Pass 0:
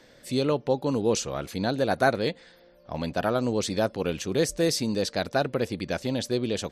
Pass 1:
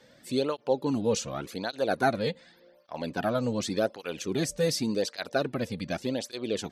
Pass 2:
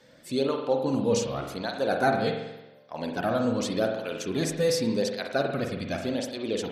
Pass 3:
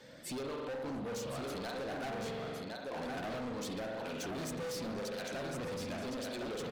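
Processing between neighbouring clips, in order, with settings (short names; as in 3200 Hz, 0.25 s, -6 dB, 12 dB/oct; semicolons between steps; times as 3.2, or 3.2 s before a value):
tape flanging out of phase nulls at 0.87 Hz, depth 3.1 ms
reverb RT60 1.0 s, pre-delay 44 ms, DRR 2.5 dB
compressor 2.5:1, threshold -37 dBFS, peak gain reduction 12.5 dB; echo 1.062 s -6 dB; hard clip -39 dBFS, distortion -6 dB; gain +1.5 dB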